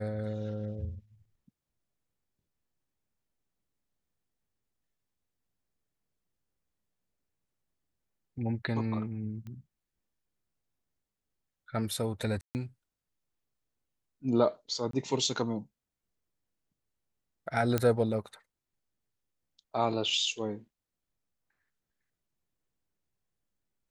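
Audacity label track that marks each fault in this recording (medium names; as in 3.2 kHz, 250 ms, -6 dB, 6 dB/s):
9.470000	9.470000	pop -33 dBFS
12.410000	12.550000	dropout 139 ms
14.910000	14.930000	dropout 23 ms
17.780000	17.780000	pop -13 dBFS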